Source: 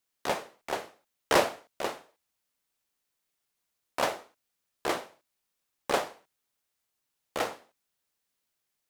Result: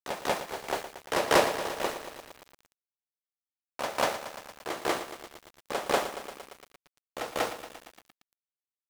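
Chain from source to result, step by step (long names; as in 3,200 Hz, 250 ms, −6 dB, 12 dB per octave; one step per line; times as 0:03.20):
centre clipping without the shift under −38.5 dBFS
backwards echo 191 ms −6.5 dB
feedback echo at a low word length 115 ms, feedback 80%, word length 7 bits, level −11 dB
level +1 dB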